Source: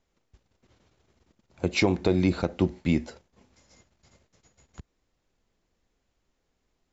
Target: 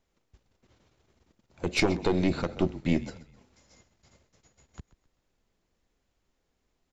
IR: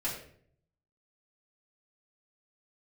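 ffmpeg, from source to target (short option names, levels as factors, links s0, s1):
-filter_complex "[0:a]asplit=4[s0][s1][s2][s3];[s1]adelay=130,afreqshift=-37,volume=0.133[s4];[s2]adelay=260,afreqshift=-74,volume=0.0519[s5];[s3]adelay=390,afreqshift=-111,volume=0.0202[s6];[s0][s4][s5][s6]amix=inputs=4:normalize=0,aeval=exprs='0.299*(cos(1*acos(clip(val(0)/0.299,-1,1)))-cos(1*PI/2))+0.119*(cos(2*acos(clip(val(0)/0.299,-1,1)))-cos(2*PI/2))':c=same,volume=0.891"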